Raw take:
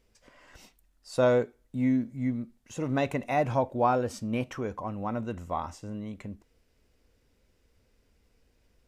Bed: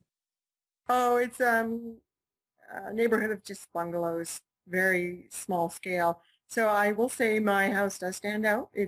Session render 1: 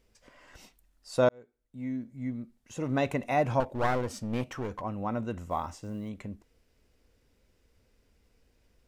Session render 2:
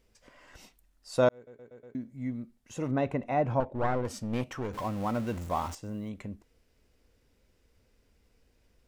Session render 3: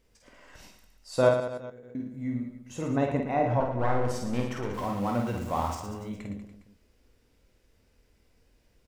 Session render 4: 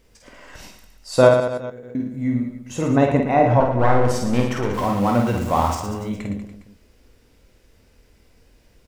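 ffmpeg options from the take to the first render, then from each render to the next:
-filter_complex "[0:a]asettb=1/sr,asplit=3[a][b][c];[a]atrim=end=3.604[d];[b]atrim=start=3.6:end=4.82,asetpts=PTS-STARTPTS,afade=t=in:d=0.004:c=qsin,afade=t=out:st=1.216:d=0.004:c=qsin,aeval=exprs='clip(val(0),-1,0.0158)':c=same[e];[c]atrim=start=4.816[f];[d][e]acrossfade=d=0.004:c1=hsin:c2=qsin[g];[g][f]acrossfade=d=0.004:c1=qsin:c2=hsin,asettb=1/sr,asplit=3[h][i][j];[h]atrim=end=5.504[k];[i]atrim=start=5.5:end=6.09,asetpts=PTS-STARTPTS,afade=t=in:d=0.004:c=qsin,afade=t=out:st=0.586:d=0.004:c=qsin,acrusher=bits=9:mode=log:mix=0:aa=0.000001[l];[j]atrim=start=6.086[m];[k][l]acrossfade=d=0.004:c1=hsin:c2=qsin[n];[n][m]acrossfade=d=0.004:c1=qsin:c2=hsin,asplit=2[o][p];[o]atrim=end=1.29,asetpts=PTS-STARTPTS,afade=t=out:st=1.286:d=0.004:c=hsin[q];[p]atrim=start=1.29,asetpts=PTS-STARTPTS,afade=t=in:d=1.79[r];[q][r]concat=n=2:v=0:a=1"
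-filter_complex "[0:a]asettb=1/sr,asplit=3[a][b][c];[a]atrim=end=2.914[d];[b]atrim=start=2.91:end=4.05,asetpts=PTS-STARTPTS,afade=t=in:d=0.004:c=qsin,afade=t=out:st=1.136:d=0.004:c=qsin,lowpass=f=1.2k:p=1[e];[c]atrim=start=4.046[f];[d][e]acrossfade=d=0.004:c1=hsin:c2=qsin[g];[g][f]acrossfade=d=0.004:c1=qsin:c2=hsin,asettb=1/sr,asplit=3[h][i][j];[h]atrim=end=4.734[k];[i]atrim=start=4.73:end=5.75,asetpts=PTS-STARTPTS,afade=t=in:d=0.004:c=qsin,afade=t=out:st=1.016:d=0.004:c=qsin,aeval=exprs='val(0)+0.5*0.0112*sgn(val(0))':c=same[l];[j]atrim=start=5.746[m];[k][l]acrossfade=d=0.004:c1=hsin:c2=qsin[n];[n][m]acrossfade=d=0.004:c1=qsin:c2=hsin,asplit=6[o][p][q][r][s][t];[o]atrim=end=1.472[u];[p]atrim=start=1.348:end=1.472[v];[q]atrim=start=1.348:end=1.472[w];[r]atrim=start=1.348:end=1.472[x];[s]atrim=start=1.348:end=1.472[y];[t]atrim=start=1.948[z];[u][v]acrossfade=d=0.004:c1=hsin:c2=hsin[aa];[aa][w]acrossfade=d=0.004:c1=hsin:c2=hsin[ab];[ab][x]acrossfade=d=0.004:c1=hsin:c2=hsin[ac];[ac][y]acrossfade=d=0.004:c1=hsin:c2=hsin[ad];[ad][z]acrossfade=d=0.004:c1=hsin:c2=hsin"
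-filter_complex "[0:a]asplit=2[a][b];[b]adelay=24,volume=-12dB[c];[a][c]amix=inputs=2:normalize=0,asplit=2[d][e];[e]aecho=0:1:50|112.5|190.6|288.3|410.4:0.631|0.398|0.251|0.158|0.1[f];[d][f]amix=inputs=2:normalize=0"
-af "volume=10dB,alimiter=limit=-2dB:level=0:latency=1"

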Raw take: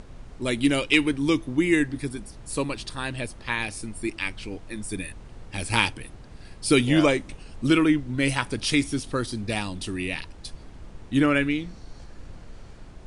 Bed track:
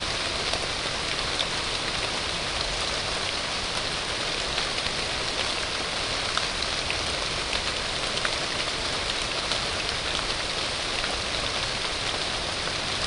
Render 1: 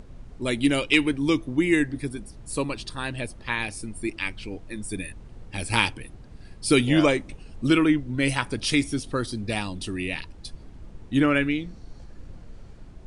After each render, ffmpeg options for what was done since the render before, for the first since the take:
-af "afftdn=nr=6:nf=-46"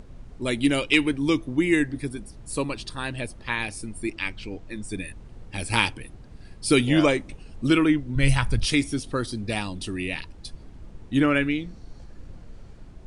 -filter_complex "[0:a]asettb=1/sr,asplit=3[a][b][c];[a]atrim=end=4.104[d];[b]atrim=start=4.1:end=5.07,asetpts=PTS-STARTPTS,afade=t=in:d=0.004:c=qsin,afade=t=out:st=0.966:d=0.004:c=qsin,lowpass=f=8.5k:w=0.5412,lowpass=f=8.5k:w=1.3066[e];[c]atrim=start=5.066[f];[d][e]acrossfade=d=0.004:c1=hsin:c2=qsin[g];[g][f]acrossfade=d=0.004:c1=qsin:c2=hsin,asplit=3[h][i][j];[h]afade=t=out:st=8.15:d=0.02[k];[i]asubboost=boost=9:cutoff=99,afade=t=in:st=8.15:d=0.02,afade=t=out:st=8.64:d=0.02[l];[j]afade=t=in:st=8.64:d=0.02[m];[k][l][m]amix=inputs=3:normalize=0"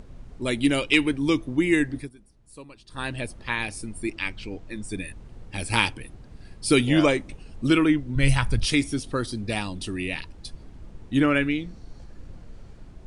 -filter_complex "[0:a]asplit=3[a][b][c];[a]atrim=end=2.1,asetpts=PTS-STARTPTS,afade=t=out:st=1.98:d=0.12:silence=0.149624[d];[b]atrim=start=2.1:end=2.88,asetpts=PTS-STARTPTS,volume=-16.5dB[e];[c]atrim=start=2.88,asetpts=PTS-STARTPTS,afade=t=in:d=0.12:silence=0.149624[f];[d][e][f]concat=n=3:v=0:a=1"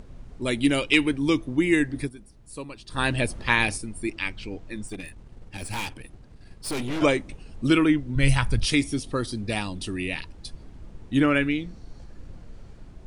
-filter_complex "[0:a]asplit=3[a][b][c];[a]afade=t=out:st=1.98:d=0.02[d];[b]acontrast=73,afade=t=in:st=1.98:d=0.02,afade=t=out:st=3.76:d=0.02[e];[c]afade=t=in:st=3.76:d=0.02[f];[d][e][f]amix=inputs=3:normalize=0,asettb=1/sr,asplit=3[g][h][i];[g]atrim=end=4.874[j];[h]atrim=start=4.87:end=7.02,asetpts=PTS-STARTPTS,afade=t=in:d=0.004:c=qsin,afade=t=out:st=2.146:d=0.004:c=qsin,aeval=exprs='(tanh(22.4*val(0)+0.65)-tanh(0.65))/22.4':c=same[k];[i]atrim=start=7.016[l];[j][k]acrossfade=d=0.004:c1=hsin:c2=qsin[m];[m][l]acrossfade=d=0.004:c1=qsin:c2=hsin,asettb=1/sr,asplit=3[n][o][p];[n]atrim=end=8.774[q];[o]atrim=start=8.77:end=9.26,asetpts=PTS-STARTPTS,afade=t=in:d=0.004:c=qsin,afade=t=out:st=0.486:d=0.004:c=qsin,bandreject=f=1.5k:w=8[r];[p]atrim=start=9.256[s];[q][r]acrossfade=d=0.004:c1=hsin:c2=qsin[t];[t][s]acrossfade=d=0.004:c1=qsin:c2=hsin"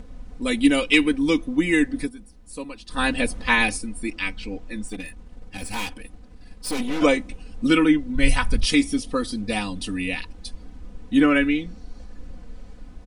-af "aecho=1:1:4:0.88"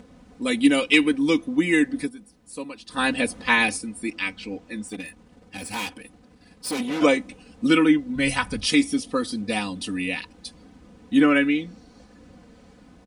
-af "highpass=120"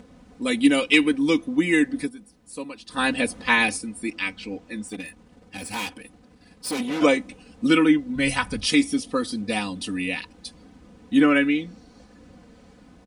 -af anull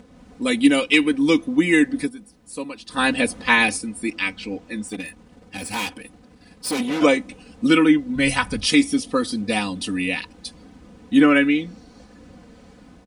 -af "dynaudnorm=f=110:g=3:m=3.5dB"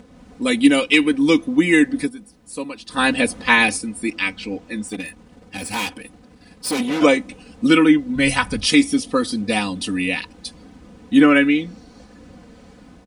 -af "volume=2dB,alimiter=limit=-1dB:level=0:latency=1"

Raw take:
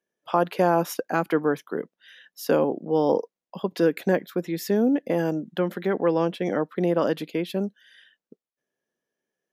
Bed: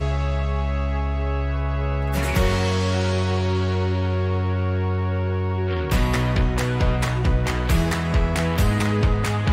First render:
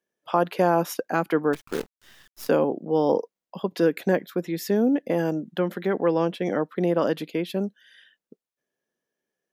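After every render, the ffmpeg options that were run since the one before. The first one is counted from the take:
-filter_complex "[0:a]asettb=1/sr,asplit=3[a][b][c];[a]atrim=end=1.534[d];[b]atrim=start=1.53:end=2.49,asetpts=PTS-STARTPTS,afade=t=in:d=0.004:c=qsin,afade=t=out:st=0.956:d=0.004:c=qsin,acrusher=bits=6:dc=4:mix=0:aa=0.000001[e];[c]atrim=start=2.486[f];[d][e]acrossfade=d=0.004:c1=hsin:c2=qsin[g];[g][f]acrossfade=d=0.004:c1=qsin:c2=hsin"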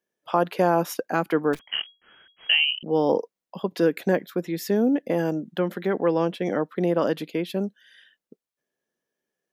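-filter_complex "[0:a]asettb=1/sr,asplit=3[a][b][c];[a]atrim=end=1.594[d];[b]atrim=start=1.59:end=2.83,asetpts=PTS-STARTPTS,afade=t=in:d=0.004:c=qsin,afade=t=out:st=1.236:d=0.004:c=qsin,lowpass=f=2.8k:t=q:w=0.5098,lowpass=f=2.8k:t=q:w=0.6013,lowpass=f=2.8k:t=q:w=0.9,lowpass=f=2.8k:t=q:w=2.563,afreqshift=-3300[e];[c]atrim=start=2.826[f];[d][e]acrossfade=d=0.004:c1=hsin:c2=qsin[g];[g][f]acrossfade=d=0.004:c1=qsin:c2=hsin"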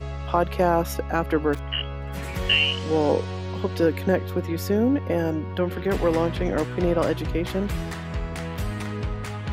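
-filter_complex "[1:a]volume=-9.5dB[a];[0:a][a]amix=inputs=2:normalize=0"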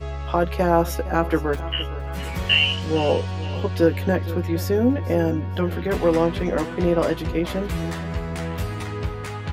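-filter_complex "[0:a]asplit=2[a][b];[b]adelay=12,volume=-4.5dB[c];[a][c]amix=inputs=2:normalize=0,aecho=1:1:464|928|1392:0.15|0.0569|0.0216"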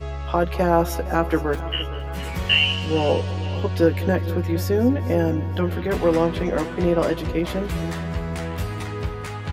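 -af "aecho=1:1:205|410|615|820:0.126|0.0592|0.0278|0.0131"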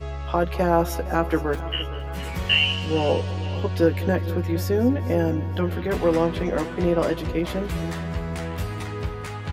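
-af "volume=-1.5dB"

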